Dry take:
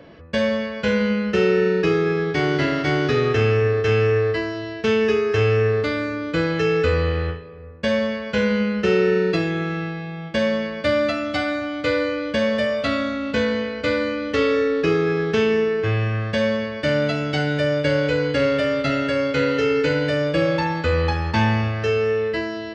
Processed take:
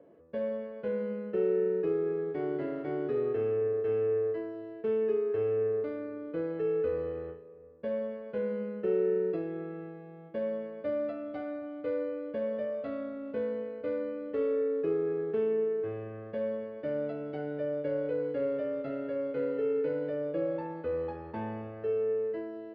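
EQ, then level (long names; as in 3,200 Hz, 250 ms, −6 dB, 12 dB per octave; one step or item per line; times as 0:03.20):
resonant band-pass 440 Hz, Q 1.5
high-frequency loss of the air 150 metres
−8.5 dB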